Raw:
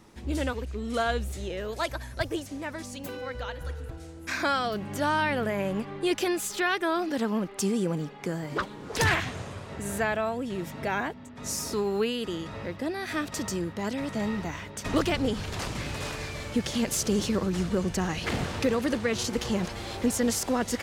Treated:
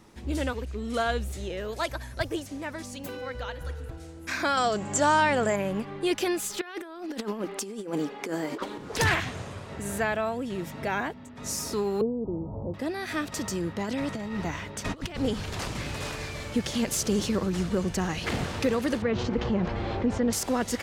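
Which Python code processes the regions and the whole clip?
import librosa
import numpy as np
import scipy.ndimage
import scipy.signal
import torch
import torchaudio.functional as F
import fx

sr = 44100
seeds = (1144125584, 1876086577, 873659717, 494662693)

y = fx.chain(x, sr, fx.lowpass_res(hz=7400.0, q=15.0),
    fx.peak_eq(hz=750.0, db=5.5, octaves=1.9), at=(4.57, 5.56))
y = fx.chain(y, sr, fx.low_shelf_res(hz=200.0, db=-11.5, q=1.5),
    fx.hum_notches(base_hz=60, count=3),
    fx.over_compress(threshold_db=-32.0, ratio=-0.5), at=(6.61, 8.78))
y = fx.chain(y, sr, fx.steep_lowpass(hz=940.0, slope=48),
    fx.low_shelf(hz=150.0, db=7.5), at=(12.01, 12.74))
y = fx.chain(y, sr, fx.high_shelf(hz=9600.0, db=-5.0),
    fx.over_compress(threshold_db=-31.0, ratio=-0.5), at=(13.64, 15.17))
y = fx.chain(y, sr, fx.spacing_loss(db_at_10k=35),
    fx.env_flatten(amount_pct=50), at=(19.02, 20.33))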